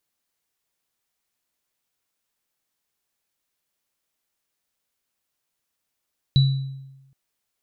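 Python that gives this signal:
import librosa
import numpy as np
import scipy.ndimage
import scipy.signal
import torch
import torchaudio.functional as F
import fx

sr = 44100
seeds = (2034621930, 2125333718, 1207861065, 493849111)

y = fx.additive_free(sr, length_s=0.77, hz=135.0, level_db=-11.0, upper_db=(-10.0,), decay_s=1.04, upper_decays_s=(0.56,), upper_hz=(3940.0,))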